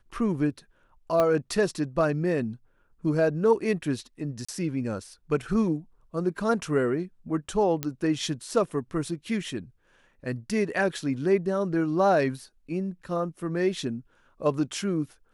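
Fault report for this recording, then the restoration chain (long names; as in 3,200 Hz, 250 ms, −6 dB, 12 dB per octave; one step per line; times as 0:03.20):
0:01.20: click −12 dBFS
0:04.45–0:04.49: drop-out 35 ms
0:07.83: click −12 dBFS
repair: click removal
repair the gap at 0:04.45, 35 ms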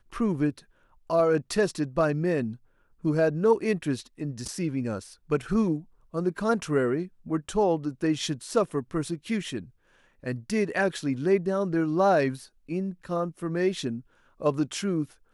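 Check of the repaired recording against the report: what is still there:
0:01.20: click
0:07.83: click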